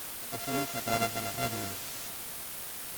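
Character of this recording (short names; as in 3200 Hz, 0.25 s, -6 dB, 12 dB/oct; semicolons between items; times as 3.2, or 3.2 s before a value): a buzz of ramps at a fixed pitch in blocks of 64 samples; random-step tremolo; a quantiser's noise floor 6-bit, dither triangular; Opus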